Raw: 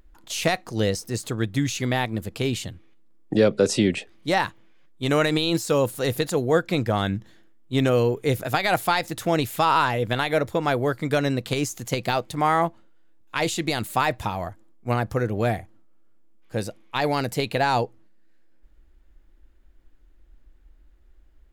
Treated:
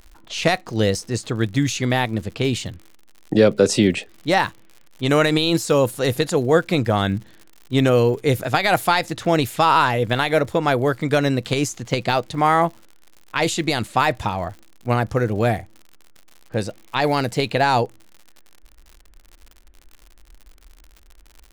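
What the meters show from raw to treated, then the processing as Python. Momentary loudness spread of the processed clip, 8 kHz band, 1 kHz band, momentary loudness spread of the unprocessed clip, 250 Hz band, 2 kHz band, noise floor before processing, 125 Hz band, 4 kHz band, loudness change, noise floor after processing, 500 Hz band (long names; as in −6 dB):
10 LU, +3.0 dB, +4.0 dB, 10 LU, +4.0 dB, +4.0 dB, −54 dBFS, +4.0 dB, +4.0 dB, +4.0 dB, −50 dBFS, +4.0 dB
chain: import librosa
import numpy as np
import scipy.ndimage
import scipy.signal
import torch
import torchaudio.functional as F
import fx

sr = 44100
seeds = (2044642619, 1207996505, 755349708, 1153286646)

y = fx.env_lowpass(x, sr, base_hz=2200.0, full_db=-19.5)
y = fx.dmg_crackle(y, sr, seeds[0], per_s=87.0, level_db=-38.0)
y = y * 10.0 ** (4.0 / 20.0)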